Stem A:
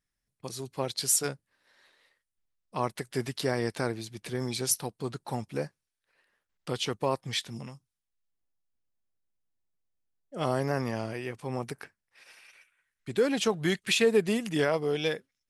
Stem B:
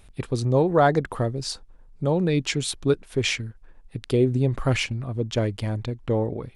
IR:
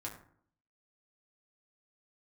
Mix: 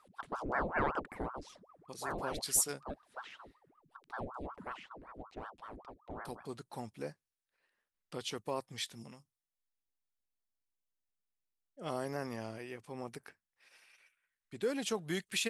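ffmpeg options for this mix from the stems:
-filter_complex "[0:a]adynamicequalizer=threshold=0.00562:dfrequency=6300:dqfactor=0.7:tfrequency=6300:tqfactor=0.7:attack=5:release=100:ratio=0.375:range=3:mode=boostabove:tftype=highshelf,adelay=1450,volume=0.355,asplit=3[s0][s1][s2];[s0]atrim=end=4.2,asetpts=PTS-STARTPTS,afade=t=out:st=4.196:d=0.004:c=hsin[s3];[s1]atrim=start=4.2:end=6.25,asetpts=PTS-STARTPTS,volume=0[s4];[s2]atrim=start=6.25,asetpts=PTS-STARTPTS,afade=t=in:d=0.004:c=hsin[s5];[s3][s4][s5]concat=n=3:v=0:a=1[s6];[1:a]acrossover=split=2800[s7][s8];[s8]acompressor=threshold=0.00631:ratio=4:attack=1:release=60[s9];[s7][s9]amix=inputs=2:normalize=0,aeval=exprs='val(0)*sin(2*PI*700*n/s+700*0.8/5.3*sin(2*PI*5.3*n/s))':c=same,volume=0.251,afade=t=out:st=1.84:d=0.68:silence=0.421697[s10];[s6][s10]amix=inputs=2:normalize=0,equalizer=f=130:w=5.7:g=-7"

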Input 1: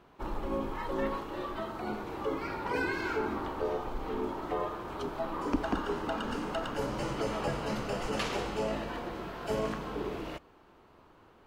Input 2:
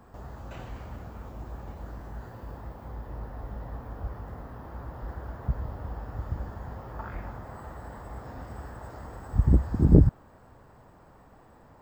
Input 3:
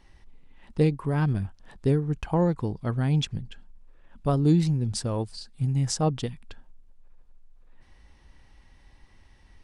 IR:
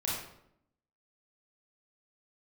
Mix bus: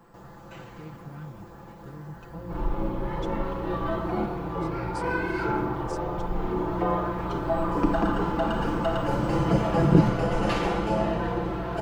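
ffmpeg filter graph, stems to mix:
-filter_complex "[0:a]highshelf=f=2300:g=-10.5,aeval=exprs='val(0)+0.00631*(sin(2*PI*60*n/s)+sin(2*PI*2*60*n/s)/2+sin(2*PI*3*60*n/s)/3+sin(2*PI*4*60*n/s)/4+sin(2*PI*5*60*n/s)/5)':c=same,adelay=2300,volume=1.33,asplit=2[s0][s1];[s1]volume=0.562[s2];[1:a]highpass=120,equalizer=f=670:t=o:w=0.22:g=-7,volume=0.891[s3];[2:a]alimiter=limit=0.0794:level=0:latency=1,volume=0.168,asplit=2[s4][s5];[s5]apad=whole_len=607189[s6];[s0][s6]sidechaincompress=threshold=0.00158:ratio=8:attack=16:release=416[s7];[3:a]atrim=start_sample=2205[s8];[s2][s8]afir=irnorm=-1:irlink=0[s9];[s7][s3][s4][s9]amix=inputs=4:normalize=0,aecho=1:1:5.9:0.67"

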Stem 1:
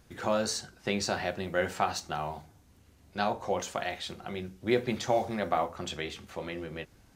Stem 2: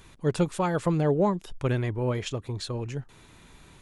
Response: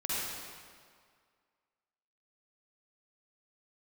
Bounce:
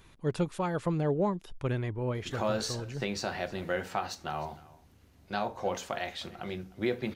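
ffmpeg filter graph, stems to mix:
-filter_complex "[0:a]adelay=2150,volume=0.944,asplit=2[s0][s1];[s1]volume=0.0794[s2];[1:a]volume=0.562[s3];[s2]aecho=0:1:307:1[s4];[s0][s3][s4]amix=inputs=3:normalize=0,equalizer=f=8100:w=1.4:g=-4.5,alimiter=limit=0.126:level=0:latency=1:release=482"

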